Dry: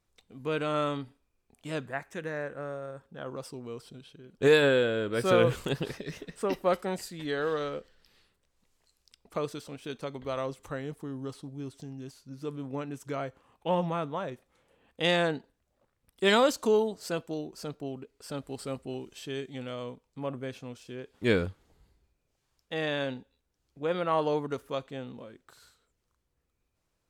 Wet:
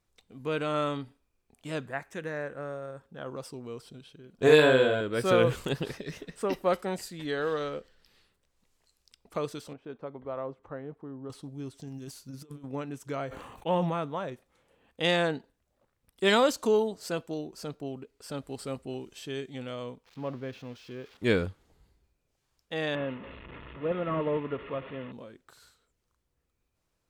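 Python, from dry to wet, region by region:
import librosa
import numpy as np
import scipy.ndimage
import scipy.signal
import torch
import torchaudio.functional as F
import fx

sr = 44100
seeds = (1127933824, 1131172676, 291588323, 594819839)

y = fx.chain(x, sr, fx.doubler(ms=46.0, db=-3.0),
    fx.small_body(hz=(690.0, 1000.0), ring_ms=85, db=12), at=(4.34, 5.01))
y = fx.chain(y, sr, fx.lowpass(hz=1000.0, slope=12),
    fx.tilt_eq(slope=2.0), at=(9.73, 11.3))
y = fx.chain(y, sr, fx.high_shelf(hz=6700.0, db=9.5),
    fx.over_compress(threshold_db=-42.0, ratio=-0.5), at=(11.87, 12.64))
y = fx.chain(y, sr, fx.notch(hz=5100.0, q=5.7),
    fx.sustainer(db_per_s=35.0), at=(13.27, 13.94))
y = fx.chain(y, sr, fx.crossing_spikes(level_db=-33.5),
    fx.air_absorb(metres=260.0), at=(20.05, 21.17))
y = fx.chain(y, sr, fx.delta_mod(bps=16000, step_db=-37.0),
    fx.notch_comb(f0_hz=770.0), at=(22.95, 25.12))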